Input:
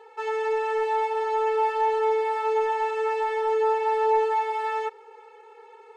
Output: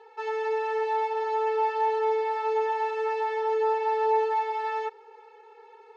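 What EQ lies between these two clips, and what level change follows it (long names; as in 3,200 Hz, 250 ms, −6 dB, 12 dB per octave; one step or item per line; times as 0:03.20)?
loudspeaker in its box 190–5,800 Hz, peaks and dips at 320 Hz −4 dB, 580 Hz −9 dB, 1,200 Hz −6 dB, 2,100 Hz −4 dB, 3,100 Hz −4 dB
0.0 dB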